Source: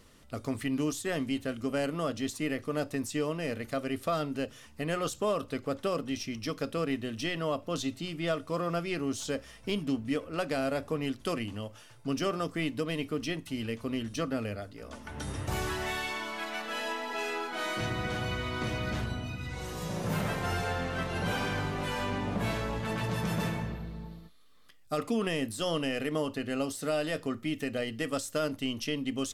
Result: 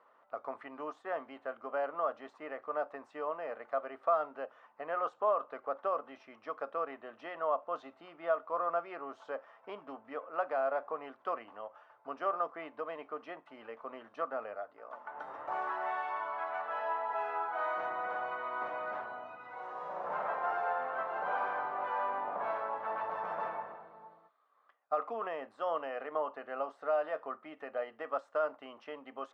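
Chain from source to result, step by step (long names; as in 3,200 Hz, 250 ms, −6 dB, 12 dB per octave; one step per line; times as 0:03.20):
flat-topped band-pass 920 Hz, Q 1.3
level +4 dB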